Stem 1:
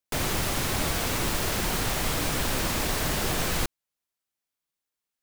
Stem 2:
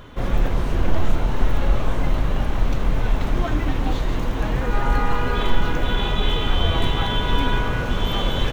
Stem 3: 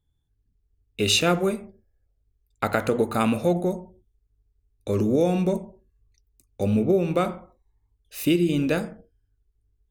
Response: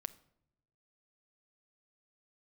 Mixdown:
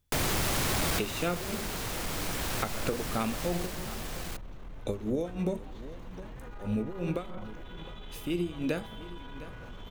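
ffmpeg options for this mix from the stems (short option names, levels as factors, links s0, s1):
-filter_complex "[0:a]asoftclip=type=tanh:threshold=0.0668,volume=1.33,asplit=3[s0][s1][s2];[s1]volume=0.266[s3];[s2]volume=0.237[s4];[1:a]asoftclip=type=tanh:threshold=0.335,alimiter=limit=0.0841:level=0:latency=1:release=122,adelay=1800,volume=0.178[s5];[2:a]acompressor=threshold=0.0631:ratio=6,tremolo=f=3.1:d=0.9,volume=1.12,asplit=3[s6][s7][s8];[s7]volume=0.119[s9];[s8]apad=whole_len=230446[s10];[s0][s10]sidechaincompress=threshold=0.00501:ratio=8:attack=16:release=1340[s11];[3:a]atrim=start_sample=2205[s12];[s3][s12]afir=irnorm=-1:irlink=0[s13];[s4][s9]amix=inputs=2:normalize=0,aecho=0:1:709:1[s14];[s11][s5][s6][s13][s14]amix=inputs=5:normalize=0,acompressor=threshold=0.0447:ratio=2.5"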